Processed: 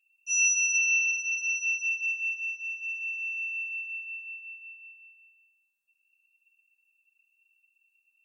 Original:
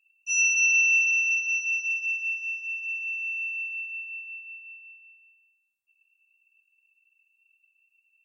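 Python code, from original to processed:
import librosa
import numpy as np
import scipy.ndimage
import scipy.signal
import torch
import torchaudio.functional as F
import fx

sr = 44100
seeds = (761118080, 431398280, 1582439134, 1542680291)

y = fx.high_shelf(x, sr, hz=4900.0, db=5.5)
y = y + 0.65 * np.pad(y, (int(7.0 * sr / 1000.0), 0))[:len(y)]
y = y + 10.0 ** (-5.0 / 20.0) * np.pad(y, (int(124 * sr / 1000.0), 0))[:len(y)]
y = y * 10.0 ** (-6.0 / 20.0)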